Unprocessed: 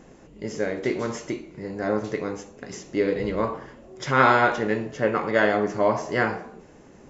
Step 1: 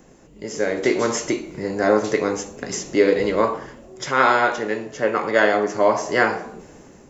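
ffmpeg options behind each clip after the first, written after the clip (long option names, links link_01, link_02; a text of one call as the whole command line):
ffmpeg -i in.wav -filter_complex "[0:a]acrossover=split=260|3300[link_01][link_02][link_03];[link_01]acompressor=threshold=-42dB:ratio=6[link_04];[link_03]highshelf=frequency=6800:gain=11[link_05];[link_04][link_02][link_05]amix=inputs=3:normalize=0,dynaudnorm=framelen=260:gausssize=5:maxgain=11dB,volume=-1dB" out.wav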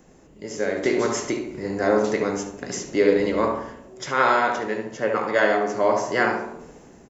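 ffmpeg -i in.wav -filter_complex "[0:a]asplit=2[link_01][link_02];[link_02]adelay=71,lowpass=frequency=1700:poles=1,volume=-4dB,asplit=2[link_03][link_04];[link_04]adelay=71,lowpass=frequency=1700:poles=1,volume=0.5,asplit=2[link_05][link_06];[link_06]adelay=71,lowpass=frequency=1700:poles=1,volume=0.5,asplit=2[link_07][link_08];[link_08]adelay=71,lowpass=frequency=1700:poles=1,volume=0.5,asplit=2[link_09][link_10];[link_10]adelay=71,lowpass=frequency=1700:poles=1,volume=0.5,asplit=2[link_11][link_12];[link_12]adelay=71,lowpass=frequency=1700:poles=1,volume=0.5[link_13];[link_01][link_03][link_05][link_07][link_09][link_11][link_13]amix=inputs=7:normalize=0,volume=-3.5dB" out.wav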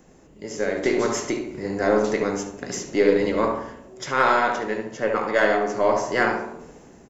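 ffmpeg -i in.wav -af "aeval=exprs='0.596*(cos(1*acos(clip(val(0)/0.596,-1,1)))-cos(1*PI/2))+0.0106*(cos(8*acos(clip(val(0)/0.596,-1,1)))-cos(8*PI/2))':channel_layout=same" out.wav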